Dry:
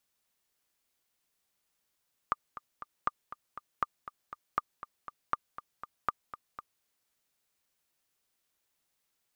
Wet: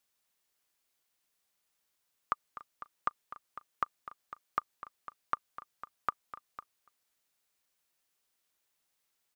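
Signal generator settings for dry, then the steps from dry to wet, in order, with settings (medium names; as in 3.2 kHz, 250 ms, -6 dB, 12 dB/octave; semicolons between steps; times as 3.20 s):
metronome 239 bpm, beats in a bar 3, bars 6, 1.2 kHz, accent 14 dB -14 dBFS
bass shelf 360 Hz -4.5 dB; delay 288 ms -22 dB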